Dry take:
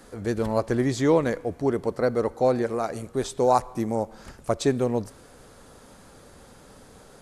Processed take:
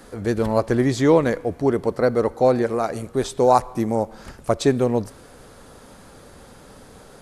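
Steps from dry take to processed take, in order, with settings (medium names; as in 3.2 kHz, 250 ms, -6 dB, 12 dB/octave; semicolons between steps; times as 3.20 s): peaking EQ 7.1 kHz -2.5 dB; trim +4.5 dB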